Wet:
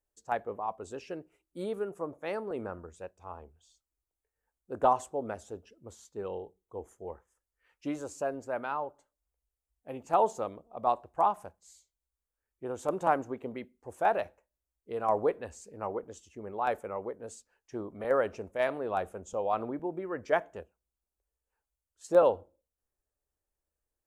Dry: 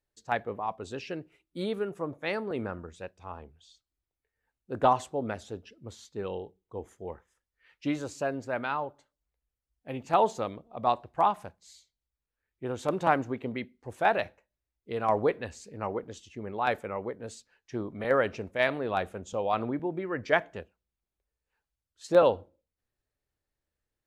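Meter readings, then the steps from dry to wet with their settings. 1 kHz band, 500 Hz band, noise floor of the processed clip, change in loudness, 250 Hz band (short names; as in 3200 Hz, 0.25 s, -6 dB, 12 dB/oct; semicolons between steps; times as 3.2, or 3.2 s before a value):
-1.5 dB, -1.5 dB, under -85 dBFS, -2.0 dB, -4.5 dB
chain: graphic EQ 125/250/2000/4000/8000 Hz -9/-4/-7/-11/+3 dB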